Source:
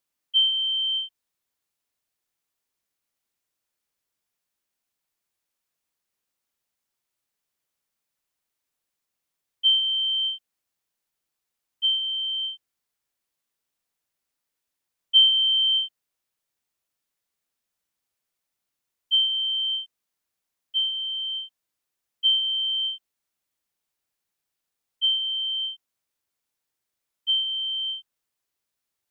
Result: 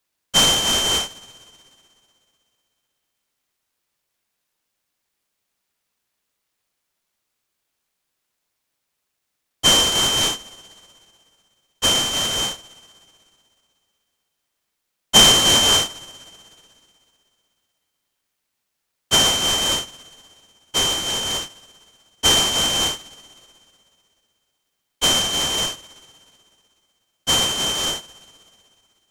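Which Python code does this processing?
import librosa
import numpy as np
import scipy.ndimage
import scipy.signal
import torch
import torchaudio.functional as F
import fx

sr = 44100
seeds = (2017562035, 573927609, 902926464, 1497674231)

y = fx.high_shelf(x, sr, hz=3000.0, db=9.0)
y = fx.rev_spring(y, sr, rt60_s=2.7, pass_ms=(43,), chirp_ms=55, drr_db=4.5)
y = fx.noise_mod_delay(y, sr, seeds[0], noise_hz=3200.0, depth_ms=0.038)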